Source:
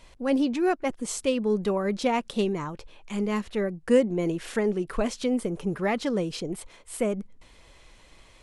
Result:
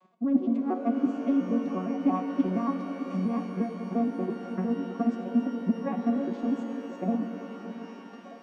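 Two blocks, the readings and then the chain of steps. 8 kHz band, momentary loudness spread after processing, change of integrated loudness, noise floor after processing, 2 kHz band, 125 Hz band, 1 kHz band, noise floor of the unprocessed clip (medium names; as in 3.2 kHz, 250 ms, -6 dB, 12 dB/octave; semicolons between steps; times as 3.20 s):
under -20 dB, 9 LU, -2.0 dB, -45 dBFS, -11.0 dB, -2.0 dB, -2.0 dB, -54 dBFS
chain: vocoder on a broken chord major triad, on F#3, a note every 116 ms; bass shelf 140 Hz -10.5 dB; transient shaper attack +11 dB, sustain -2 dB; reverse; compression 5:1, threshold -40 dBFS, peak gain reduction 28 dB; reverse; small resonant body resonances 270/680/1100 Hz, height 17 dB, ringing for 25 ms; on a send: repeats whose band climbs or falls 616 ms, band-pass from 260 Hz, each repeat 1.4 oct, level -10.5 dB; on the sum: pitch-shifted reverb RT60 3.4 s, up +12 st, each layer -8 dB, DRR 6 dB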